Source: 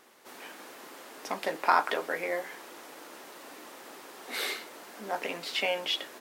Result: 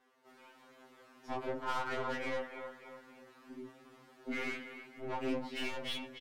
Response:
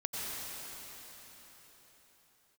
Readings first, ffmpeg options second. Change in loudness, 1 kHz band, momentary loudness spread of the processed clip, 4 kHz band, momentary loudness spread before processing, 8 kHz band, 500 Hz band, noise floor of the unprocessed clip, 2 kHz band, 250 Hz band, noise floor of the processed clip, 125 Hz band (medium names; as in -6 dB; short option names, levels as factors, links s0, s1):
-8.5 dB, -10.0 dB, 22 LU, -10.5 dB, 20 LU, -13.5 dB, -6.0 dB, -49 dBFS, -8.0 dB, +2.5 dB, -63 dBFS, +4.5 dB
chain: -filter_complex "[0:a]asubboost=boost=5.5:cutoff=230,afwtdn=0.0178,flanger=delay=19.5:depth=4.5:speed=0.44,asplit=2[s0][s1];[s1]aecho=0:1:295|590|885|1180:0.15|0.0613|0.0252|0.0103[s2];[s0][s2]amix=inputs=2:normalize=0,aeval=exprs='(tanh(141*val(0)+0.2)-tanh(0.2))/141':c=same,lowpass=f=2300:p=1,afftfilt=real='re*2.45*eq(mod(b,6),0)':imag='im*2.45*eq(mod(b,6),0)':win_size=2048:overlap=0.75,volume=3.76"